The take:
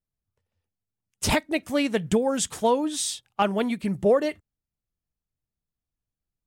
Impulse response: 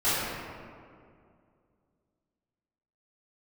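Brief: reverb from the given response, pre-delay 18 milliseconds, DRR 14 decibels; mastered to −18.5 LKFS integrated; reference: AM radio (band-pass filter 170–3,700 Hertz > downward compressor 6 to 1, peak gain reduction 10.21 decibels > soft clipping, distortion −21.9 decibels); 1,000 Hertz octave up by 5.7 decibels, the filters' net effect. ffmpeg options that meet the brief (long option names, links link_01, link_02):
-filter_complex "[0:a]equalizer=frequency=1000:width_type=o:gain=7,asplit=2[link_01][link_02];[1:a]atrim=start_sample=2205,adelay=18[link_03];[link_02][link_03]afir=irnorm=-1:irlink=0,volume=-28.5dB[link_04];[link_01][link_04]amix=inputs=2:normalize=0,highpass=170,lowpass=3700,acompressor=threshold=-23dB:ratio=6,asoftclip=threshold=-16dB,volume=12dB"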